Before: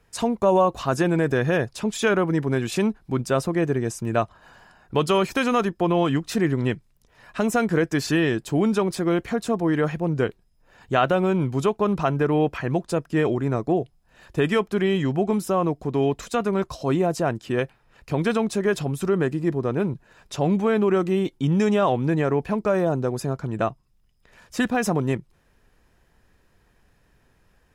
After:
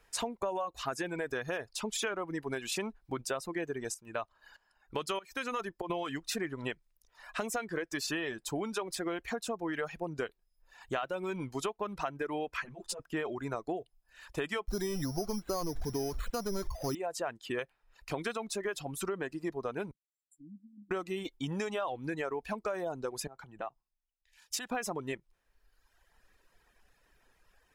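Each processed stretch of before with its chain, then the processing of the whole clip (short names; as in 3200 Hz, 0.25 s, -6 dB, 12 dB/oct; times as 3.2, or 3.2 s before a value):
3.94–5.9 notch 720 Hz, Q 13 + tremolo saw up 1.6 Hz, depth 75%
12.57–13 negative-ratio compressor -30 dBFS + ensemble effect
14.68–16.95 zero-crossing step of -28.5 dBFS + RIAA curve playback + careless resampling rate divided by 8×, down filtered, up hold
19.91–20.91 auto-wah 470–4700 Hz, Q 3.5, down, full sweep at -23 dBFS + brick-wall FIR band-stop 310–7200 Hz
23.27–24.71 bell 810 Hz +8 dB 0.23 oct + compressor, threshold -33 dBFS + three-band expander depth 100%
whole clip: reverb removal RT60 1.2 s; bell 130 Hz -14 dB 2.7 oct; compressor 6:1, threshold -32 dBFS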